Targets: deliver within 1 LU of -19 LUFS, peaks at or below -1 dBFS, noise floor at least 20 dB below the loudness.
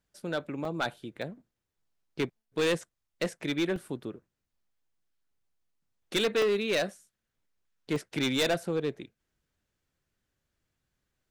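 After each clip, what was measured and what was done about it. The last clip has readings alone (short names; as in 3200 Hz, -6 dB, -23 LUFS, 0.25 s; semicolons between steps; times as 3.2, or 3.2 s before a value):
clipped 1.4%; flat tops at -22.5 dBFS; dropouts 5; longest dropout 2.2 ms; loudness -31.5 LUFS; peak -22.5 dBFS; loudness target -19.0 LUFS
-> clip repair -22.5 dBFS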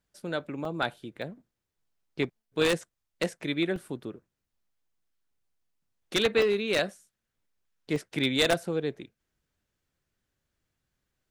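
clipped 0.0%; dropouts 5; longest dropout 2.2 ms
-> interpolate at 0.65/1.22/3.76/6.42/7.96, 2.2 ms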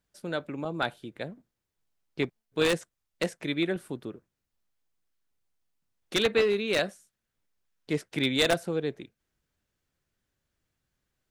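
dropouts 0; loudness -29.5 LUFS; peak -13.5 dBFS; loudness target -19.0 LUFS
-> gain +10.5 dB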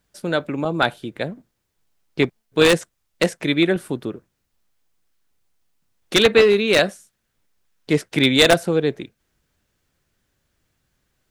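loudness -19.0 LUFS; peak -3.0 dBFS; noise floor -74 dBFS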